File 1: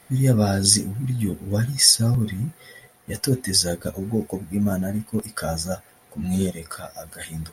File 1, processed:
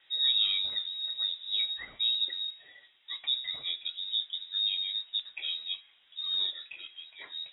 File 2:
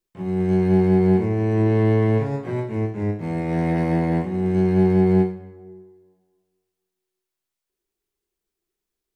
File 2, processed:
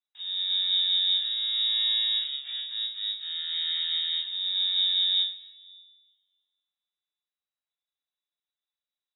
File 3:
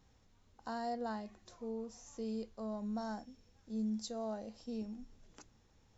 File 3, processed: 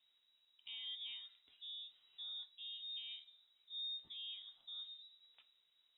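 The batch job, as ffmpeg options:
-af "bandreject=f=126.4:t=h:w=4,bandreject=f=252.8:t=h:w=4,bandreject=f=379.2:t=h:w=4,bandreject=f=505.6:t=h:w=4,bandreject=f=632:t=h:w=4,bandreject=f=758.4:t=h:w=4,bandreject=f=884.8:t=h:w=4,bandreject=f=1011.2:t=h:w=4,bandreject=f=1137.6:t=h:w=4,bandreject=f=1264:t=h:w=4,bandreject=f=1390.4:t=h:w=4,bandreject=f=1516.8:t=h:w=4,bandreject=f=1643.2:t=h:w=4,bandreject=f=1769.6:t=h:w=4,bandreject=f=1896:t=h:w=4,bandreject=f=2022.4:t=h:w=4,bandreject=f=2148.8:t=h:w=4,bandreject=f=2275.2:t=h:w=4,bandreject=f=2401.6:t=h:w=4,bandreject=f=2528:t=h:w=4,bandreject=f=2654.4:t=h:w=4,bandreject=f=2780.8:t=h:w=4,bandreject=f=2907.2:t=h:w=4,bandreject=f=3033.6:t=h:w=4,bandreject=f=3160:t=h:w=4,bandreject=f=3286.4:t=h:w=4,bandreject=f=3412.8:t=h:w=4,bandreject=f=3539.2:t=h:w=4,bandreject=f=3665.6:t=h:w=4,lowpass=f=3300:t=q:w=0.5098,lowpass=f=3300:t=q:w=0.6013,lowpass=f=3300:t=q:w=0.9,lowpass=f=3300:t=q:w=2.563,afreqshift=-3900,volume=0.376"

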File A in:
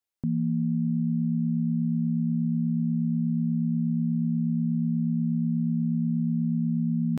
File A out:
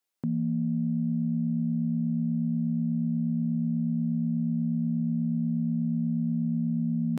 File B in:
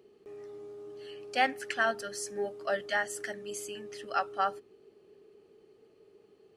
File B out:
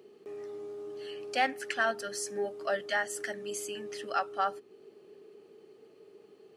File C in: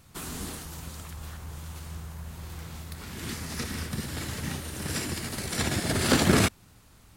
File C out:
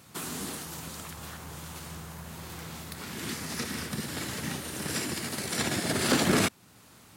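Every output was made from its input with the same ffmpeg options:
-filter_complex "[0:a]highpass=150,asplit=2[s0][s1];[s1]acompressor=threshold=0.00708:ratio=4,volume=1[s2];[s0][s2]amix=inputs=2:normalize=0,asoftclip=type=tanh:threshold=0.237,volume=0.841"

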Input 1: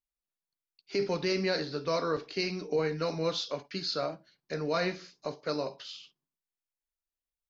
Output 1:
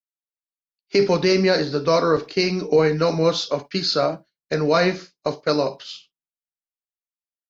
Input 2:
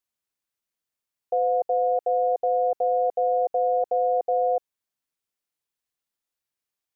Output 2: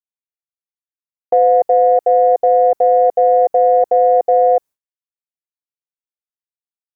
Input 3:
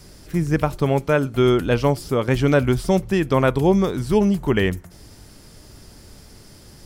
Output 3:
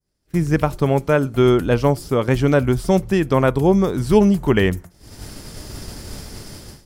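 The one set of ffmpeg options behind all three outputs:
-af "dynaudnorm=f=120:g=5:m=5.31,adynamicequalizer=threshold=0.02:dfrequency=3000:dqfactor=0.72:tfrequency=3000:tqfactor=0.72:attack=5:release=100:ratio=0.375:range=3:mode=cutabove:tftype=bell,agate=range=0.0224:threshold=0.0501:ratio=3:detection=peak,aeval=exprs='0.944*(cos(1*acos(clip(val(0)/0.944,-1,1)))-cos(1*PI/2))+0.0237*(cos(3*acos(clip(val(0)/0.944,-1,1)))-cos(3*PI/2))':c=same,volume=0.891"

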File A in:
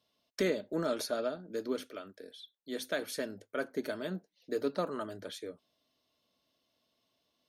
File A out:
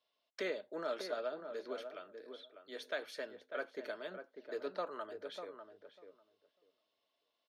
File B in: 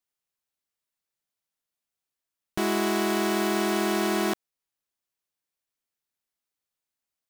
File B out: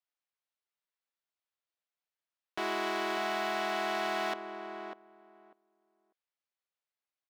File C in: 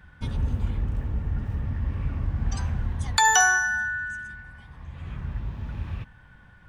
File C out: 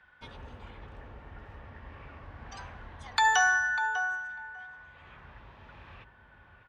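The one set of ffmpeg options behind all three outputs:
-filter_complex "[0:a]acrossover=split=410 4700:gain=0.112 1 0.158[s0][s1][s2];[s0][s1][s2]amix=inputs=3:normalize=0,asplit=2[s3][s4];[s4]adelay=596,lowpass=f=1200:p=1,volume=0.447,asplit=2[s5][s6];[s6]adelay=596,lowpass=f=1200:p=1,volume=0.16,asplit=2[s7][s8];[s8]adelay=596,lowpass=f=1200:p=1,volume=0.16[s9];[s3][s5][s7][s9]amix=inputs=4:normalize=0,volume=0.668"

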